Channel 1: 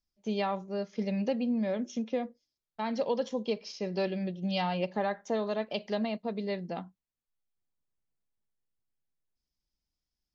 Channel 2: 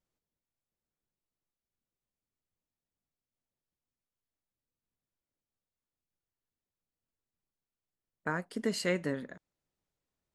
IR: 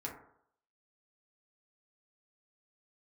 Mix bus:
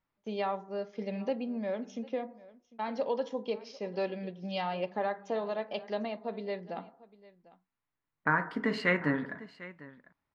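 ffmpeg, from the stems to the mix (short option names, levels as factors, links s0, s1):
-filter_complex "[0:a]agate=range=0.398:threshold=0.00178:ratio=16:detection=peak,lowshelf=f=270:g=-11,volume=0.841,asplit=3[s0][s1][s2];[s1]volume=0.316[s3];[s2]volume=0.112[s4];[1:a]equalizer=f=125:t=o:w=1:g=4,equalizer=f=250:t=o:w=1:g=3,equalizer=f=500:t=o:w=1:g=-3,equalizer=f=1000:t=o:w=1:g=10,equalizer=f=2000:t=o:w=1:g=9,equalizer=f=4000:t=o:w=1:g=5,equalizer=f=8000:t=o:w=1:g=-8,volume=0.596,asplit=3[s5][s6][s7];[s6]volume=0.668[s8];[s7]volume=0.178[s9];[2:a]atrim=start_sample=2205[s10];[s3][s8]amix=inputs=2:normalize=0[s11];[s11][s10]afir=irnorm=-1:irlink=0[s12];[s4][s9]amix=inputs=2:normalize=0,aecho=0:1:749:1[s13];[s0][s5][s12][s13]amix=inputs=4:normalize=0,aemphasis=mode=reproduction:type=75fm"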